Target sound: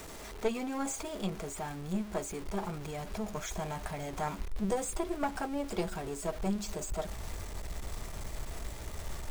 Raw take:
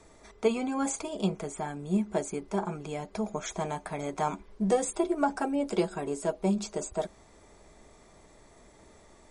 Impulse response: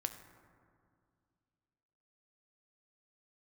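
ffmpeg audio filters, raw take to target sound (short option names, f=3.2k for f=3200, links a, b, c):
-af "aeval=exprs='val(0)+0.5*0.0188*sgn(val(0))':c=same,asubboost=boost=4.5:cutoff=120,aeval=exprs='(tanh(8.91*val(0)+0.75)-tanh(0.75))/8.91':c=same,volume=-2dB"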